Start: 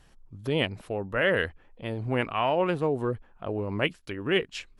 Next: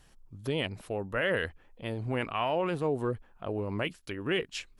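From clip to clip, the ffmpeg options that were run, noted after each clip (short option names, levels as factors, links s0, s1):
-af "alimiter=limit=0.126:level=0:latency=1:release=11,highshelf=f=5000:g=6.5,volume=0.75"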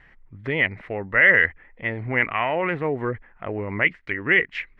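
-af "lowpass=f=2000:t=q:w=9.2,volume=1.58"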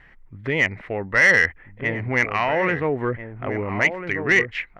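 -filter_complex "[0:a]acontrast=86,asplit=2[s0][s1];[s1]adelay=1341,volume=0.398,highshelf=f=4000:g=-30.2[s2];[s0][s2]amix=inputs=2:normalize=0,volume=0.562"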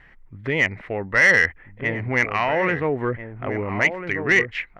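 -af anull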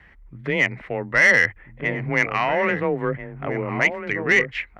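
-af "afreqshift=21"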